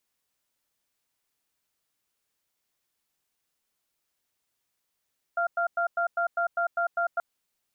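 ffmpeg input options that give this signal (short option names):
-f lavfi -i "aevalsrc='0.0501*(sin(2*PI*687*t)+sin(2*PI*1390*t))*clip(min(mod(t,0.2),0.1-mod(t,0.2))/0.005,0,1)':d=1.83:s=44100"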